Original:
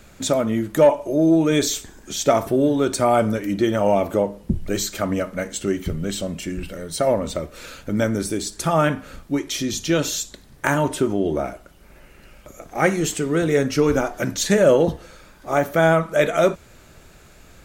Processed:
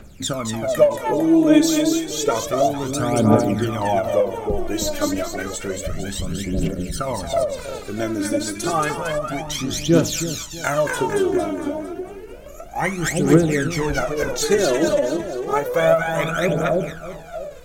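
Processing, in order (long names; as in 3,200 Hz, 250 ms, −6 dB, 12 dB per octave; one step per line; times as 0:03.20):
echo with a time of its own for lows and highs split 810 Hz, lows 321 ms, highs 227 ms, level −4 dB
phase shifter 0.3 Hz, delay 3.5 ms, feedback 73%
every ending faded ahead of time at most 160 dB per second
level −4 dB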